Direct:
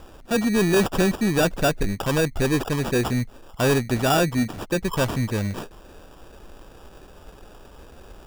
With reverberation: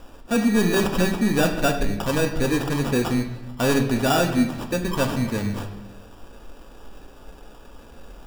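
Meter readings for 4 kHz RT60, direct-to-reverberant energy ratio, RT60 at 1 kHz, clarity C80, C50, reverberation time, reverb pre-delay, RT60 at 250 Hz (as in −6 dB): 0.85 s, 3.0 dB, 0.95 s, 10.5 dB, 8.5 dB, 1.0 s, 3 ms, 1.3 s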